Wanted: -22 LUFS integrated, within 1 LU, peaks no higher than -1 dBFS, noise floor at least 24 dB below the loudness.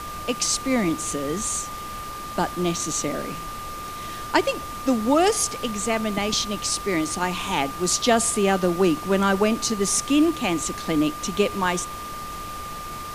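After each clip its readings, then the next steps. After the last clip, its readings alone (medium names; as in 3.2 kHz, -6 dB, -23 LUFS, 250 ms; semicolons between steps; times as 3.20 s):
steady tone 1.2 kHz; tone level -33 dBFS; noise floor -34 dBFS; noise floor target -48 dBFS; loudness -23.5 LUFS; peak level -4.0 dBFS; loudness target -22.0 LUFS
-> band-stop 1.2 kHz, Q 30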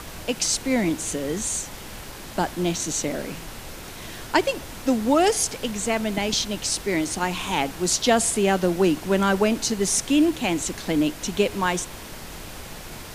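steady tone not found; noise floor -39 dBFS; noise floor target -47 dBFS
-> noise print and reduce 8 dB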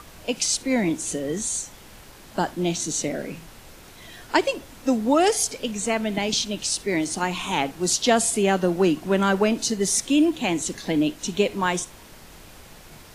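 noise floor -46 dBFS; noise floor target -48 dBFS
-> noise print and reduce 6 dB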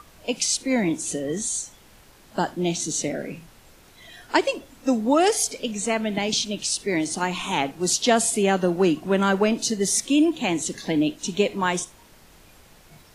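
noise floor -52 dBFS; loudness -23.5 LUFS; peak level -4.5 dBFS; loudness target -22.0 LUFS
-> trim +1.5 dB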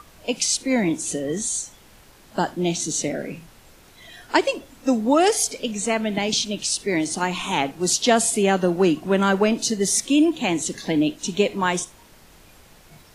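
loudness -22.0 LUFS; peak level -3.0 dBFS; noise floor -51 dBFS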